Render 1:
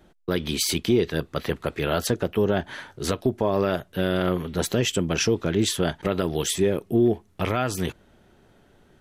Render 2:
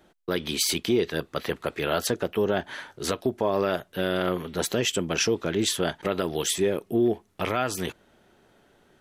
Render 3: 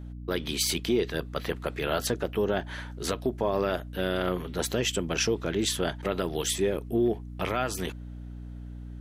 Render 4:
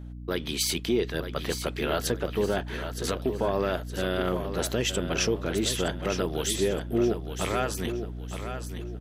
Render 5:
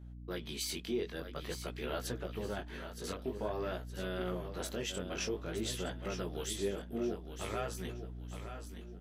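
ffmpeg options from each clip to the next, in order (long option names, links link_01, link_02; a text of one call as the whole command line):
ffmpeg -i in.wav -af "lowshelf=frequency=180:gain=-11" out.wav
ffmpeg -i in.wav -af "aeval=exprs='val(0)+0.0158*(sin(2*PI*60*n/s)+sin(2*PI*2*60*n/s)/2+sin(2*PI*3*60*n/s)/3+sin(2*PI*4*60*n/s)/4+sin(2*PI*5*60*n/s)/5)':channel_layout=same,volume=-2.5dB" out.wav
ffmpeg -i in.wav -af "aecho=1:1:917|1834|2751|3668:0.355|0.121|0.041|0.0139" out.wav
ffmpeg -i in.wav -af "flanger=delay=15.5:depth=6.1:speed=0.5,volume=-8dB" out.wav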